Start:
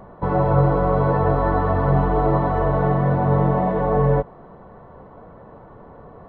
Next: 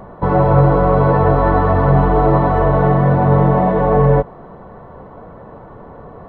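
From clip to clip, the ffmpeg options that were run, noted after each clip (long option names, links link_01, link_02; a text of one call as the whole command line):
ffmpeg -i in.wav -af "acontrast=37,volume=1dB" out.wav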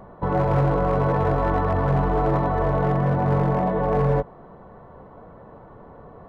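ffmpeg -i in.wav -af "asoftclip=type=hard:threshold=-7dB,volume=-8dB" out.wav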